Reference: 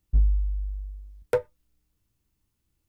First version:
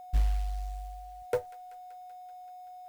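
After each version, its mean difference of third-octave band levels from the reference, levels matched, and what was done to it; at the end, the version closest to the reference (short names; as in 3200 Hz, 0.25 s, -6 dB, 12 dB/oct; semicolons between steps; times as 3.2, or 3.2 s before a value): 9.0 dB: whine 730 Hz -38 dBFS; companded quantiser 6-bit; on a send: thin delay 0.191 s, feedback 74%, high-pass 1500 Hz, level -17.5 dB; on the sum: gain -6 dB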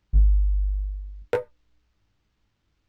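2.0 dB: in parallel at +2 dB: compressor, threshold -27 dBFS, peak gain reduction 11 dB; on the sum: chorus 2.1 Hz, delay 18.5 ms, depth 2.3 ms; decimation joined by straight lines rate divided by 4×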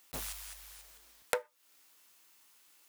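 15.5 dB: block floating point 7-bit; HPF 860 Hz 12 dB/oct; compressor 6:1, threshold -50 dBFS, peak gain reduction 20.5 dB; gain +18 dB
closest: second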